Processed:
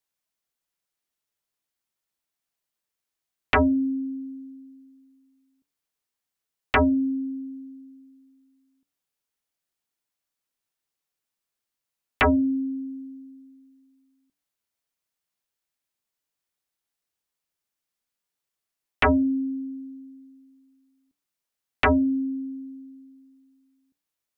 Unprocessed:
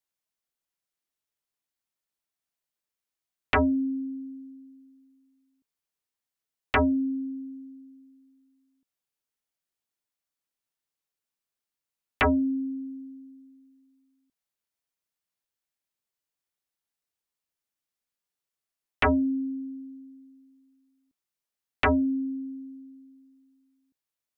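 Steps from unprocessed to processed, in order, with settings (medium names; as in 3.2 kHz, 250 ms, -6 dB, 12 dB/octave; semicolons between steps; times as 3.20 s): de-hum 95.54 Hz, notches 6; trim +3 dB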